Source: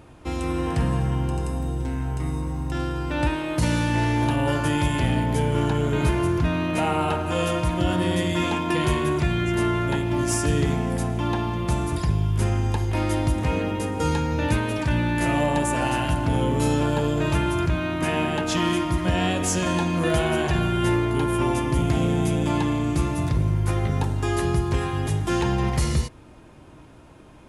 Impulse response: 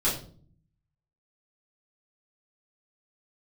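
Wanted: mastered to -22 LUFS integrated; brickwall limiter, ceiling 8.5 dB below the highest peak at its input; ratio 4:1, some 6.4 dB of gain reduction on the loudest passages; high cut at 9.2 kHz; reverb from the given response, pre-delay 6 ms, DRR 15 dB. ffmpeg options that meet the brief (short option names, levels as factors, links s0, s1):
-filter_complex "[0:a]lowpass=9200,acompressor=threshold=0.0562:ratio=4,alimiter=limit=0.0631:level=0:latency=1,asplit=2[s0][s1];[1:a]atrim=start_sample=2205,adelay=6[s2];[s1][s2]afir=irnorm=-1:irlink=0,volume=0.0531[s3];[s0][s3]amix=inputs=2:normalize=0,volume=3.16"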